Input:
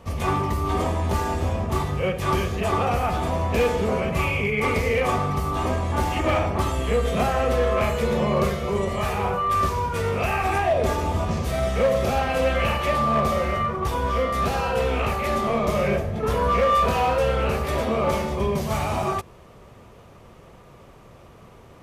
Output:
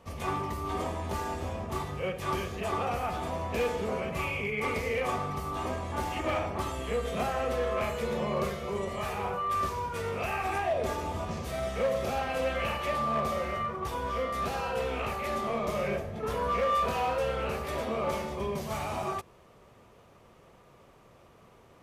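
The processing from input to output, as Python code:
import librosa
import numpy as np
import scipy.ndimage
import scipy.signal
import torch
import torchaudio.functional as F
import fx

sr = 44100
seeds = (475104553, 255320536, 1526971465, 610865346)

y = fx.low_shelf(x, sr, hz=170.0, db=-6.5)
y = y * 10.0 ** (-7.5 / 20.0)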